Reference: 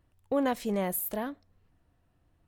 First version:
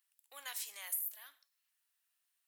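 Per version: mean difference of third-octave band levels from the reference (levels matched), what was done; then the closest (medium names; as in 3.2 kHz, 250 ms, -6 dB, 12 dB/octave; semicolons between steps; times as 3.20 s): 15.0 dB: high-pass 1.4 kHz 12 dB/octave; differentiator; compression 10:1, threshold -41 dBFS, peak gain reduction 15.5 dB; gated-style reverb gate 190 ms falling, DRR 12 dB; trim +5.5 dB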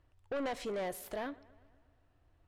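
6.5 dB: peaking EQ 190 Hz -12.5 dB 0.73 oct; saturation -33.5 dBFS, distortion -7 dB; distance through air 62 m; feedback echo behind a low-pass 121 ms, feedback 62%, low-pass 3.2 kHz, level -22 dB; trim +1 dB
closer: second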